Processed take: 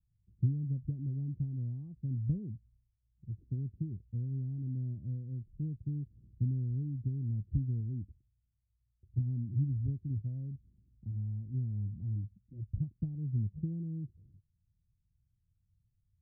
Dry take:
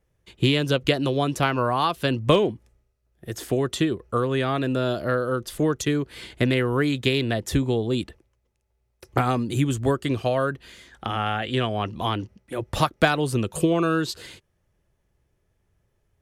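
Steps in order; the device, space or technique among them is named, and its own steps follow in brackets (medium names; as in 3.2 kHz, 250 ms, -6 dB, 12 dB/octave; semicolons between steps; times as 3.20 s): the neighbour's flat through the wall (low-pass 190 Hz 24 dB/octave; peaking EQ 100 Hz +6 dB 0.68 oct); 7.80–9.17 s: dynamic bell 160 Hz, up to -6 dB, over -46 dBFS, Q 3; trim -8 dB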